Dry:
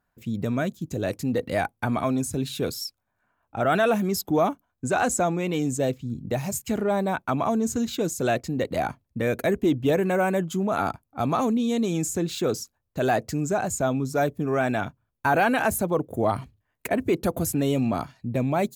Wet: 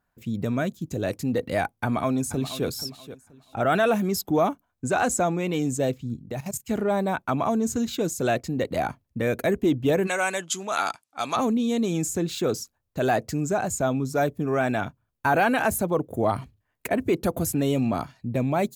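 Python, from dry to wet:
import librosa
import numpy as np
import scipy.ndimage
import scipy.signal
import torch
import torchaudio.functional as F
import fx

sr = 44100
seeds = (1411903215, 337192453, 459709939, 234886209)

y = fx.echo_throw(x, sr, start_s=1.73, length_s=0.93, ms=480, feedback_pct=25, wet_db=-13.5)
y = fx.level_steps(y, sr, step_db=15, at=(6.15, 6.69), fade=0.02)
y = fx.weighting(y, sr, curve='ITU-R 468', at=(10.06, 11.35), fade=0.02)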